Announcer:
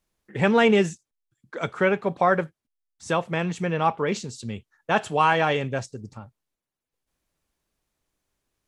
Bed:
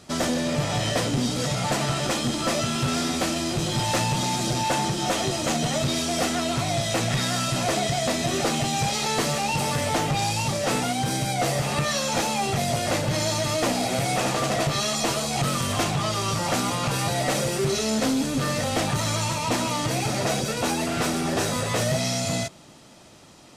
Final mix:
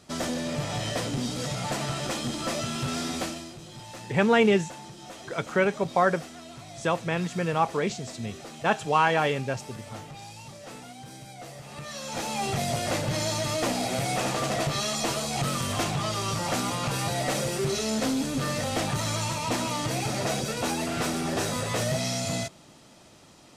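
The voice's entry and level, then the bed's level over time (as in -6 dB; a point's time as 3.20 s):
3.75 s, -2.0 dB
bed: 3.22 s -5.5 dB
3.58 s -18.5 dB
11.62 s -18.5 dB
12.44 s -3.5 dB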